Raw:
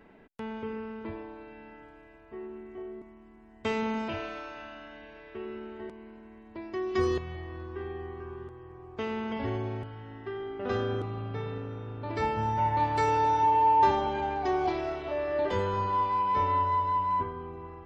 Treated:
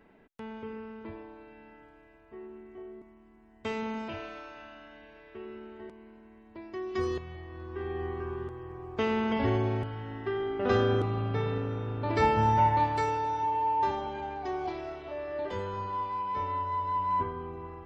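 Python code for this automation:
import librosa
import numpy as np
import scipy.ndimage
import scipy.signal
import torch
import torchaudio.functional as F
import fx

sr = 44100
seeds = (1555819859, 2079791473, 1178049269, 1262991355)

y = fx.gain(x, sr, db=fx.line((7.49, -4.0), (8.05, 5.0), (12.56, 5.0), (13.22, -6.0), (16.64, -6.0), (17.26, 1.0)))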